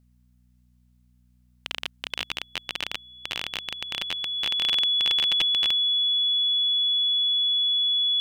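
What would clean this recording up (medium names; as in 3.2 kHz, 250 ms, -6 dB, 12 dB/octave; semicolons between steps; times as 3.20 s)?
de-hum 61.2 Hz, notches 4; band-stop 3.4 kHz, Q 30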